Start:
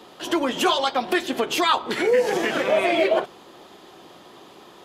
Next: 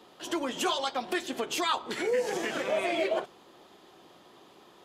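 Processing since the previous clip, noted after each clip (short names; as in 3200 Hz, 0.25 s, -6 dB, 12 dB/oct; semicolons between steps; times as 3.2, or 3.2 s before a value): dynamic EQ 7400 Hz, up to +6 dB, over -45 dBFS, Q 1.1; gain -9 dB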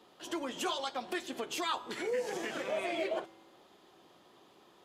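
resonator 110 Hz, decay 1.5 s, harmonics odd, mix 50%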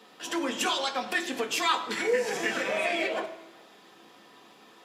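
reverb RT60 1.0 s, pre-delay 3 ms, DRR 5 dB; gain +7.5 dB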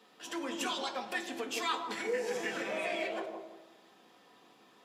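analogue delay 0.166 s, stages 1024, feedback 31%, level -4 dB; gain -8 dB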